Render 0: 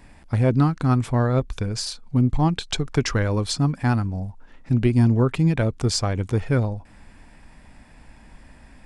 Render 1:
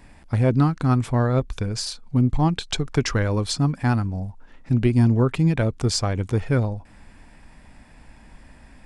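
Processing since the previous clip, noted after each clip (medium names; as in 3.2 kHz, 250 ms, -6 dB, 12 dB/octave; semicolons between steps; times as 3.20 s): no audible change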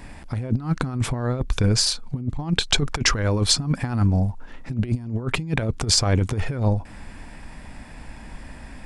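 compressor with a negative ratio -24 dBFS, ratio -0.5; trim +3.5 dB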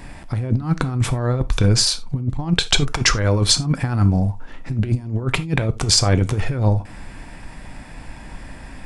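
gated-style reverb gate 110 ms falling, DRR 11 dB; trim +3 dB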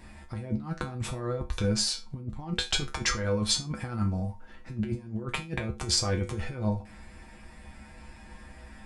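feedback comb 71 Hz, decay 0.2 s, harmonics odd, mix 90%; trim -2 dB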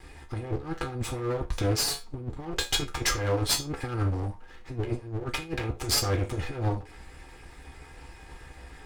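comb filter that takes the minimum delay 2.4 ms; trim +2.5 dB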